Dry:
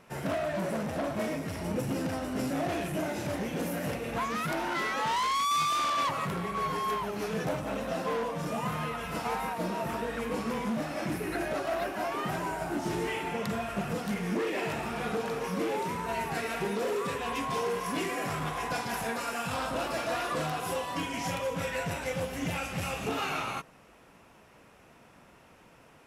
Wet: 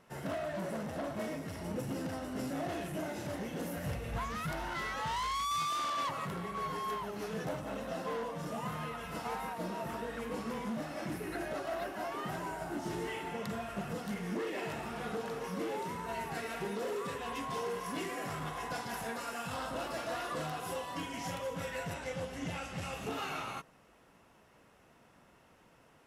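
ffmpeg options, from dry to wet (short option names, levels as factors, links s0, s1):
-filter_complex "[0:a]asplit=3[s0][s1][s2];[s0]afade=t=out:st=3.76:d=0.02[s3];[s1]asubboost=boost=8.5:cutoff=97,afade=t=in:st=3.76:d=0.02,afade=t=out:st=5.59:d=0.02[s4];[s2]afade=t=in:st=5.59:d=0.02[s5];[s3][s4][s5]amix=inputs=3:normalize=0,asettb=1/sr,asplit=3[s6][s7][s8];[s6]atrim=end=21.944[s9];[s7]atrim=start=21.94:end=22.93,asetpts=PTS-STARTPTS,afade=t=in:d=0.004:c=qsin,afade=t=out:st=0.986:d=0.004:c=qsin,lowpass=9100[s10];[s8]atrim=start=22.926[s11];[s9][s10]acrossfade=d=0.004:c1=hsin:c2=qsin[s12];[s12][s11]acrossfade=d=0.004:c1=qsin:c2=hsin,bandreject=f=2400:w=14,volume=0.501"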